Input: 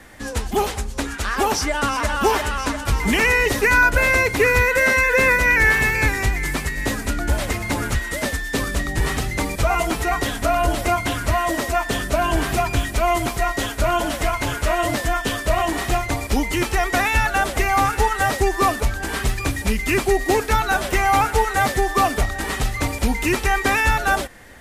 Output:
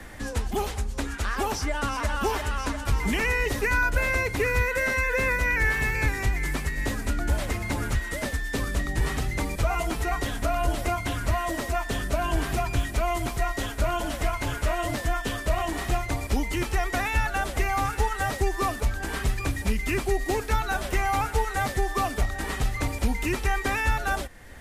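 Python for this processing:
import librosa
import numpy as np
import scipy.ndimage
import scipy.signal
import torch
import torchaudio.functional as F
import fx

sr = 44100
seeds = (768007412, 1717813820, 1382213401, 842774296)

y = fx.low_shelf(x, sr, hz=100.0, db=7.0)
y = fx.band_squash(y, sr, depth_pct=40)
y = y * 10.0 ** (-8.5 / 20.0)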